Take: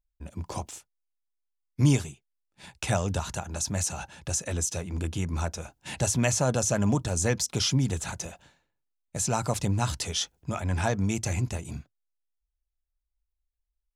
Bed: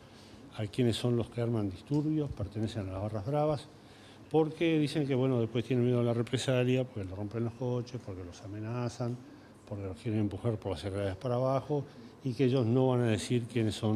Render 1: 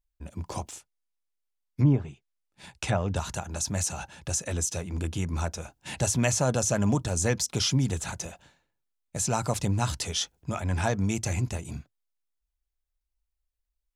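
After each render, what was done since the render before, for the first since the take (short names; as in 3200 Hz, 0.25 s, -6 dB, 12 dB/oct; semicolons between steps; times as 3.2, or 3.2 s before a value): 0.72–3.16 treble ducked by the level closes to 1000 Hz, closed at -18.5 dBFS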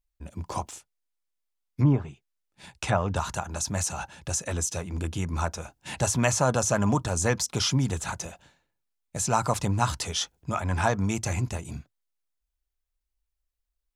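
dynamic EQ 1100 Hz, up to +8 dB, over -46 dBFS, Q 1.3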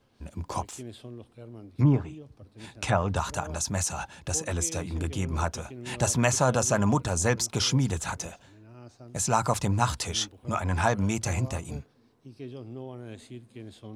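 add bed -13 dB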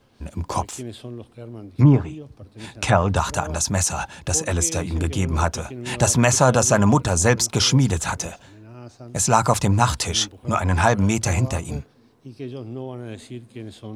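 gain +7.5 dB; limiter -2 dBFS, peak gain reduction 2.5 dB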